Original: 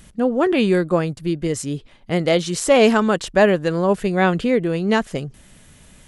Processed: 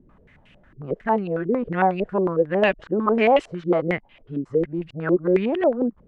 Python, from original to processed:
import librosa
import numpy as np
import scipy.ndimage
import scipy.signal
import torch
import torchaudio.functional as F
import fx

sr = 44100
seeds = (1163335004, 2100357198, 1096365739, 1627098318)

y = np.flip(x).copy()
y = fx.filter_held_lowpass(y, sr, hz=11.0, low_hz=350.0, high_hz=2700.0)
y = F.gain(torch.from_numpy(y), -7.0).numpy()